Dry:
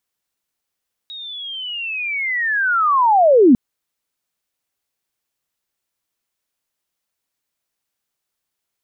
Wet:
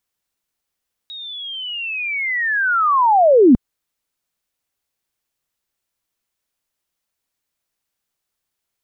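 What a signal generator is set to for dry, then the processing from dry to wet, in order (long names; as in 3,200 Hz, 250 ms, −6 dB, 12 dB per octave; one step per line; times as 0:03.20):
glide linear 3,800 Hz → 220 Hz −30 dBFS → −6 dBFS 2.45 s
low-shelf EQ 79 Hz +6 dB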